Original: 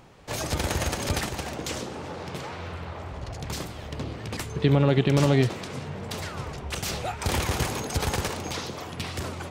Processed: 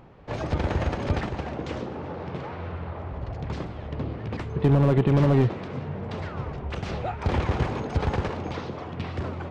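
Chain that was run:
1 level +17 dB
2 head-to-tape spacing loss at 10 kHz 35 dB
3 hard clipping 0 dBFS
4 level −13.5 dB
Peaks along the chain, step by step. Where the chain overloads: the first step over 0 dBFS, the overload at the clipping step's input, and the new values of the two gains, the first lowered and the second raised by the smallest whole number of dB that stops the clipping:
+8.5, +6.5, 0.0, −13.5 dBFS
step 1, 6.5 dB
step 1 +10 dB, step 4 −6.5 dB

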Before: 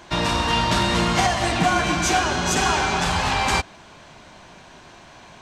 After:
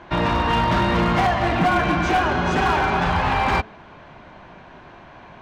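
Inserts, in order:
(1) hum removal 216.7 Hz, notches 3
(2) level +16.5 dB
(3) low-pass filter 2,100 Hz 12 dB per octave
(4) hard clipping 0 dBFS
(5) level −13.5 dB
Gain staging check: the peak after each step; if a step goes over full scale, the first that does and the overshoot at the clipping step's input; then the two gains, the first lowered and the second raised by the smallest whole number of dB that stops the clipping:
−6.5, +10.0, +8.5, 0.0, −13.5 dBFS
step 2, 8.5 dB
step 2 +7.5 dB, step 5 −4.5 dB

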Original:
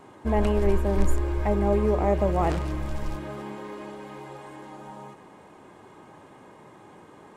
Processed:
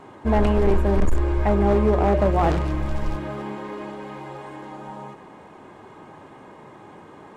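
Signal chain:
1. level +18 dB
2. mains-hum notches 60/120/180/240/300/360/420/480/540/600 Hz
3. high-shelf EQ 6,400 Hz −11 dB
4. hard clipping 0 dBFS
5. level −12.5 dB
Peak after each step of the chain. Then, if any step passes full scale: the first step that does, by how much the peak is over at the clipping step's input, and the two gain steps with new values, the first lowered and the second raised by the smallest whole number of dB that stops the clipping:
+10.0, +9.5, +9.5, 0.0, −12.5 dBFS
step 1, 9.5 dB
step 1 +8 dB, step 5 −2.5 dB

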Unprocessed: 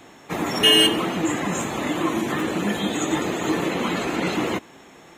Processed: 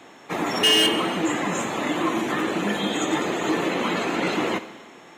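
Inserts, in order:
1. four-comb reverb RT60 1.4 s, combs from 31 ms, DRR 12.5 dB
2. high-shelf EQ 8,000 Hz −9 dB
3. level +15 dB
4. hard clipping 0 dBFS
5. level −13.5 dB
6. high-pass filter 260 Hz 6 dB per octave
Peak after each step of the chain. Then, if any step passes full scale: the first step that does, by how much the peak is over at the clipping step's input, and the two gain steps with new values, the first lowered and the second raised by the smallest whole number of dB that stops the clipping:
−4.5, −5.5, +9.5, 0.0, −13.5, −10.0 dBFS
step 3, 9.5 dB
step 3 +5 dB, step 5 −3.5 dB

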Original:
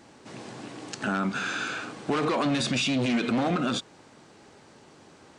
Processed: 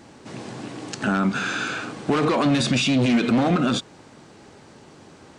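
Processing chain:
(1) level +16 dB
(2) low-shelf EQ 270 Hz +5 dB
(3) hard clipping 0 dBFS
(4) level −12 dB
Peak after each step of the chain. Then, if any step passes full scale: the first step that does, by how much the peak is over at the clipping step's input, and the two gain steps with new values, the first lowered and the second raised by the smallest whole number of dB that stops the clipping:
+1.0, +3.0, 0.0, −12.0 dBFS
step 1, 3.0 dB
step 1 +13 dB, step 4 −9 dB

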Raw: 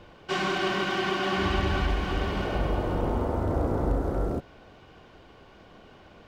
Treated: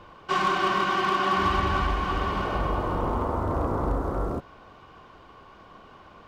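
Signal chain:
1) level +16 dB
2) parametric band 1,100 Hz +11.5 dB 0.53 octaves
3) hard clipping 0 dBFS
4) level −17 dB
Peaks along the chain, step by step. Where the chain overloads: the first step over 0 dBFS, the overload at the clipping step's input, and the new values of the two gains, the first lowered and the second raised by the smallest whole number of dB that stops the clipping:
+3.0, +6.5, 0.0, −17.0 dBFS
step 1, 6.5 dB
step 1 +9 dB, step 4 −10 dB

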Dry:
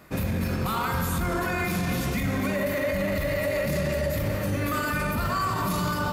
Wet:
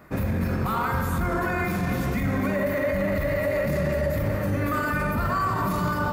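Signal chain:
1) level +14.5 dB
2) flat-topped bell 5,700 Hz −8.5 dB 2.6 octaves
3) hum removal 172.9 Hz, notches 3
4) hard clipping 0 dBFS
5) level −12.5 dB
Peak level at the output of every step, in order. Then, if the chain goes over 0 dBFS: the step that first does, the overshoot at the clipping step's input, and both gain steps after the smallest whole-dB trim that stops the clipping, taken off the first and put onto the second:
−1.0, −1.5, −2.0, −2.0, −14.5 dBFS
no step passes full scale

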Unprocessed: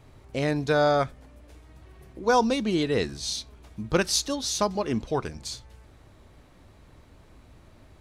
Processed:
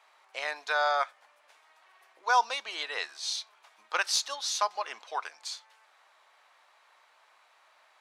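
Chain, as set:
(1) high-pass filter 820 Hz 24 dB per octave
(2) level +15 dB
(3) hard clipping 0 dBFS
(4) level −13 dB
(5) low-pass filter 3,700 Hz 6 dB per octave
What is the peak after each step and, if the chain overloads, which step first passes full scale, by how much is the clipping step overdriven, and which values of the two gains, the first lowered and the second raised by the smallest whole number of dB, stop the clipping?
−11.5, +3.5, 0.0, −13.0, −13.5 dBFS
step 2, 3.5 dB
step 2 +11 dB, step 4 −9 dB

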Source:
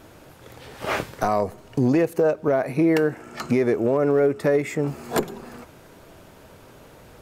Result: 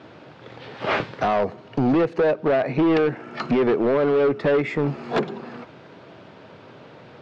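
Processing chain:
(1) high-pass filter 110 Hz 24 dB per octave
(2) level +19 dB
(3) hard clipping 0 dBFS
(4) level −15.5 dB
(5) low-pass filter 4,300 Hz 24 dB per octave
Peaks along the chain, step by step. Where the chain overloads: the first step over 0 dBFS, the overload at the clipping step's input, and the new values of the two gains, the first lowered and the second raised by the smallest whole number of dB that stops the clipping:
−9.0, +10.0, 0.0, −15.5, −14.0 dBFS
step 2, 10.0 dB
step 2 +9 dB, step 4 −5.5 dB

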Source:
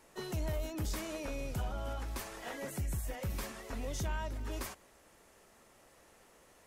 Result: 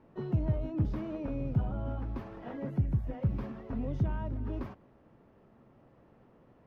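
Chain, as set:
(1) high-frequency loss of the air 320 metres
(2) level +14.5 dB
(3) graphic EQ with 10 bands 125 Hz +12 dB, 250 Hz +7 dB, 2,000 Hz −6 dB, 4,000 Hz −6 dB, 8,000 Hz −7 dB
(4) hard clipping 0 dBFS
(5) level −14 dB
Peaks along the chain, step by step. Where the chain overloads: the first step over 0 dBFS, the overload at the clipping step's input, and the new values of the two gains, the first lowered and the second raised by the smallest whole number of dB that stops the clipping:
−29.5, −15.0, −3.5, −3.5, −17.5 dBFS
no step passes full scale

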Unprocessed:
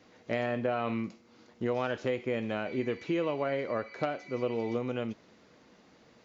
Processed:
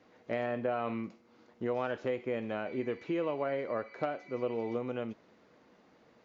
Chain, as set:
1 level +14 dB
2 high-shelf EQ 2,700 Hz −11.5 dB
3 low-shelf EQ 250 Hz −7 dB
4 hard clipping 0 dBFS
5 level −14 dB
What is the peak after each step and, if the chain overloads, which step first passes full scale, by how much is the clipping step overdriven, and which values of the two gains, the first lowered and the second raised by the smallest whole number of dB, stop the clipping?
−2.0, −3.5, −4.5, −4.5, −18.5 dBFS
no step passes full scale

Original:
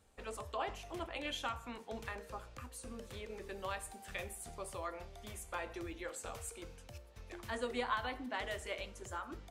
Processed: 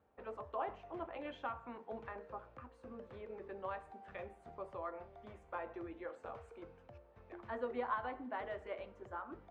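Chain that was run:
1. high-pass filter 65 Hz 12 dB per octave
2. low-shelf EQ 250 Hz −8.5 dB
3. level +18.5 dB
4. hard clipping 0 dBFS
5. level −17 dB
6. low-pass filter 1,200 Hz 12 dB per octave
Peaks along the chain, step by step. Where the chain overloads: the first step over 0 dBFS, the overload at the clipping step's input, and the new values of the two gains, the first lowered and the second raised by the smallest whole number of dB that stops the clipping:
−23.5, −24.0, −5.5, −5.5, −22.5, −25.0 dBFS
no step passes full scale

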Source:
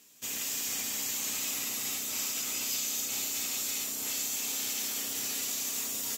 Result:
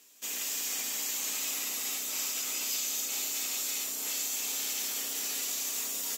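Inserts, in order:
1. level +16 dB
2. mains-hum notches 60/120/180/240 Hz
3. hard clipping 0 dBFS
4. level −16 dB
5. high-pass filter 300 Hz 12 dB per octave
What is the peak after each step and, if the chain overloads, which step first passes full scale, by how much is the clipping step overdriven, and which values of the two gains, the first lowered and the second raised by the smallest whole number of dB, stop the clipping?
−2.5, −2.5, −2.5, −18.5, −18.5 dBFS
no step passes full scale

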